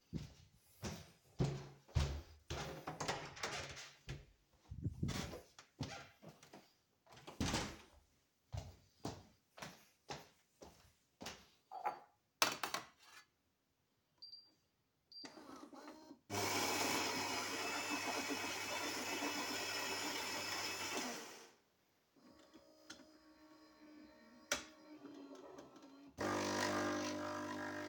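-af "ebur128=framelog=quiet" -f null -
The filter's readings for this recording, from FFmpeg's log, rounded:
Integrated loudness:
  I:         -42.7 LUFS
  Threshold: -54.7 LUFS
Loudness range:
  LRA:        13.9 LU
  Threshold: -65.2 LUFS
  LRA low:   -54.5 LUFS
  LRA high:  -40.6 LUFS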